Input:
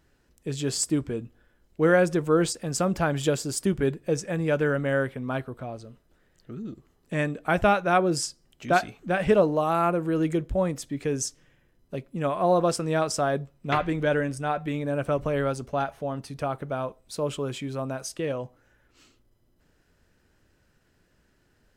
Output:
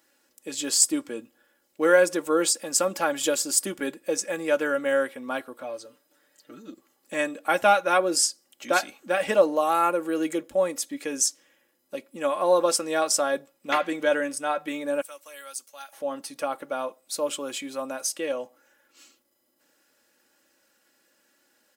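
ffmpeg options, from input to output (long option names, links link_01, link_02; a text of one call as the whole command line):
ffmpeg -i in.wav -filter_complex "[0:a]asettb=1/sr,asplit=3[link_01][link_02][link_03];[link_01]atrim=end=5.634[link_04];[link_02]atrim=start=5.63:end=6.7,asetpts=PTS-STARTPTS,afade=type=in:duration=0.004:curve=qsin,afade=type=out:start_time=1.066:duration=0.004:curve=qsin,aecho=1:1:6.8:0.59,atrim=end_sample=47187[link_05];[link_03]atrim=start=6.696[link_06];[link_04][link_05]acrossfade=duration=0.004:curve1=hsin:curve2=qsin[link_07];[link_07][link_06]acrossfade=duration=0.004:curve1=qsin:curve2=hsin,asettb=1/sr,asplit=3[link_08][link_09][link_10];[link_08]atrim=end=15.014[link_11];[link_09]atrim=start=15.01:end=15.93,asetpts=PTS-STARTPTS,afade=type=in:duration=0.004:curve=qsin,afade=type=out:start_time=0.916:duration=0.004:curve=qsin,aderivative[link_12];[link_10]atrim=start=15.926[link_13];[link_11][link_12]acrossfade=duration=0.004:curve1=hsin:curve2=qsin[link_14];[link_14][link_13]acrossfade=duration=0.004:curve1=qsin:curve2=hsin,highpass=380,highshelf=frequency=5900:gain=11.5,aecho=1:1:3.6:0.64" out.wav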